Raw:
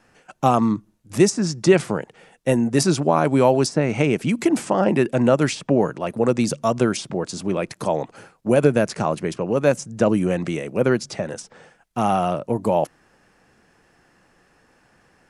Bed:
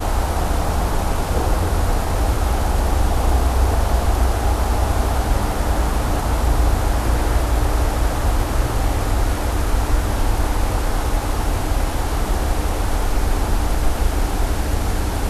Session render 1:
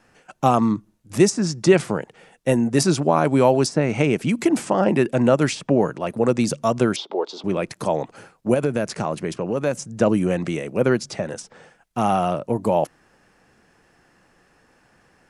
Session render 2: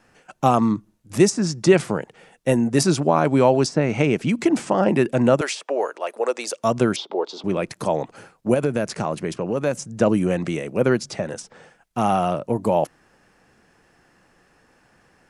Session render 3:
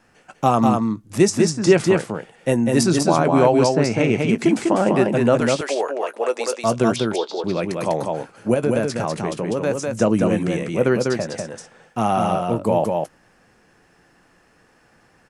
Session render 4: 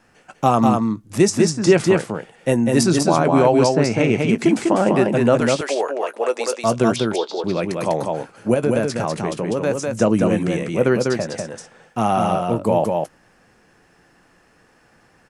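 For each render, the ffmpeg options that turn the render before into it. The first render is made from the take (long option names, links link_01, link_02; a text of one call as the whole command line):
ffmpeg -i in.wav -filter_complex "[0:a]asettb=1/sr,asplit=3[link_01][link_02][link_03];[link_01]atrim=end=6.964[link_04];[link_02]atrim=start=6.96:end=7.44,asetpts=PTS-STARTPTS,afade=type=in:duration=0.004:curve=qsin,afade=type=out:start_time=0.476:duration=0.004:curve=qsin,highpass=frequency=350:width=0.5412,highpass=frequency=350:width=1.3066,equalizer=frequency=410:width_type=q:width=4:gain=6,equalizer=frequency=870:width_type=q:width=4:gain=8,equalizer=frequency=1700:width_type=q:width=4:gain=-10,equalizer=frequency=2500:width_type=q:width=4:gain=-5,equalizer=frequency=3500:width_type=q:width=4:gain=8,lowpass=frequency=4600:width=0.5412,lowpass=frequency=4600:width=1.3066[link_05];[link_03]atrim=start=7.436[link_06];[link_04][link_05]acrossfade=duration=0.004:curve1=hsin:curve2=qsin[link_07];[link_07][link_06]acrossfade=duration=0.004:curve1=qsin:curve2=hsin,asettb=1/sr,asplit=3[link_08][link_09][link_10];[link_08]atrim=end=8.544[link_11];[link_09]atrim=start=8.54:end=9.88,asetpts=PTS-STARTPTS,afade=type=in:duration=0.004:curve=qsin,afade=type=out:start_time=1.336:duration=0.004:curve=qsin,acompressor=threshold=-20dB:ratio=2:attack=3.2:release=140:knee=1:detection=peak[link_12];[link_10]atrim=start=9.876[link_13];[link_11][link_12]acrossfade=duration=0.004:curve1=hsin:curve2=qsin[link_14];[link_14][link_13]acrossfade=duration=0.004:curve1=qsin:curve2=hsin" out.wav
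ffmpeg -i in.wav -filter_complex "[0:a]asettb=1/sr,asplit=3[link_01][link_02][link_03];[link_01]atrim=end=3.104[link_04];[link_02]atrim=start=3.1:end=4.68,asetpts=PTS-STARTPTS,afade=type=in:duration=0.004:curve=qsin,afade=type=out:start_time=1.576:duration=0.004:curve=qsin,lowpass=7900[link_05];[link_03]atrim=start=4.676[link_06];[link_04][link_05]acrossfade=duration=0.004:curve1=hsin:curve2=qsin[link_07];[link_07][link_06]acrossfade=duration=0.004:curve1=qsin:curve2=hsin,asettb=1/sr,asplit=3[link_08][link_09][link_10];[link_08]atrim=end=5.414[link_11];[link_09]atrim=start=5.41:end=6.64,asetpts=PTS-STARTPTS,afade=type=in:duration=0.004:curve=qsin,afade=type=out:start_time=1.226:duration=0.004:curve=qsin,highpass=frequency=450:width=0.5412,highpass=frequency=450:width=1.3066[link_12];[link_10]atrim=start=6.636[link_13];[link_11][link_12]acrossfade=duration=0.004:curve1=hsin:curve2=qsin[link_14];[link_14][link_13]acrossfade=duration=0.004:curve1=qsin:curve2=hsin" out.wav
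ffmpeg -i in.wav -filter_complex "[0:a]asplit=2[link_01][link_02];[link_02]adelay=18,volume=-14dB[link_03];[link_01][link_03]amix=inputs=2:normalize=0,aecho=1:1:198:0.668" out.wav
ffmpeg -i in.wav -af "volume=1dB,alimiter=limit=-3dB:level=0:latency=1" out.wav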